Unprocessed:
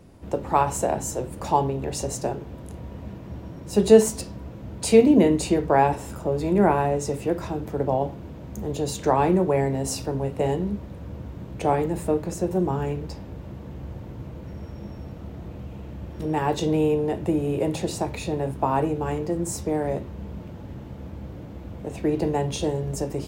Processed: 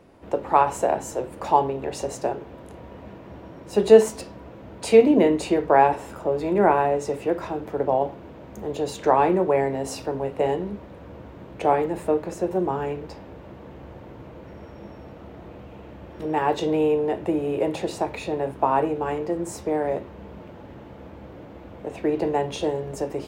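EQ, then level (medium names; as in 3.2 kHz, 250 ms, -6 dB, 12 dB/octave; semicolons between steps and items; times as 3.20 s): tone controls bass -12 dB, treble -10 dB; +3.0 dB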